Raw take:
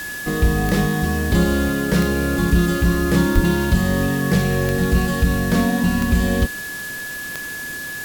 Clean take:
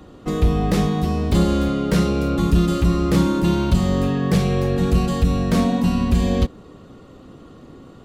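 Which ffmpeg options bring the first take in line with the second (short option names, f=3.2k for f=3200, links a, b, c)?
-filter_complex "[0:a]adeclick=t=4,bandreject=f=1.7k:w=30,asplit=3[a][b][c];[a]afade=t=out:st=3.34:d=0.02[d];[b]highpass=f=140:w=0.5412,highpass=f=140:w=1.3066,afade=t=in:st=3.34:d=0.02,afade=t=out:st=3.46:d=0.02[e];[c]afade=t=in:st=3.46:d=0.02[f];[d][e][f]amix=inputs=3:normalize=0,afwtdn=0.018"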